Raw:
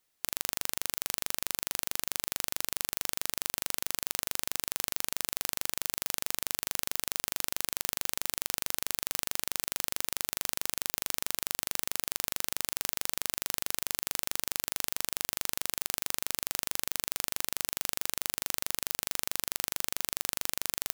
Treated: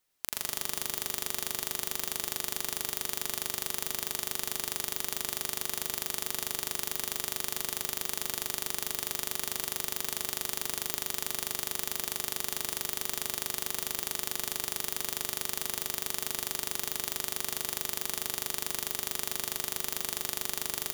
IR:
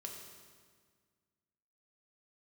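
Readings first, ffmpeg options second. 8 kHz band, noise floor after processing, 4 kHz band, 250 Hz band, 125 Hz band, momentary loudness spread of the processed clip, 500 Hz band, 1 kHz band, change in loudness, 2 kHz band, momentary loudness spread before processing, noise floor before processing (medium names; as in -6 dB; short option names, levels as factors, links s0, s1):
0.0 dB, -42 dBFS, 0.0 dB, +3.0 dB, +0.5 dB, 0 LU, +3.5 dB, +0.5 dB, 0.0 dB, -0.5 dB, 0 LU, -77 dBFS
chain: -filter_complex "[0:a]asplit=2[s0][s1];[1:a]atrim=start_sample=2205,adelay=86[s2];[s1][s2]afir=irnorm=-1:irlink=0,volume=1[s3];[s0][s3]amix=inputs=2:normalize=0,volume=0.841"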